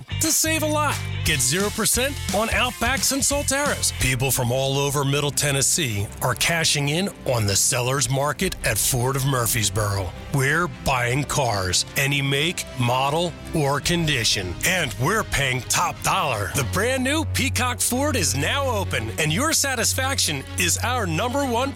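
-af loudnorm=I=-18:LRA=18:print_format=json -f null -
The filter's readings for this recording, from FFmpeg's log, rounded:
"input_i" : "-21.0",
"input_tp" : "-10.3",
"input_lra" : "1.3",
"input_thresh" : "-31.0",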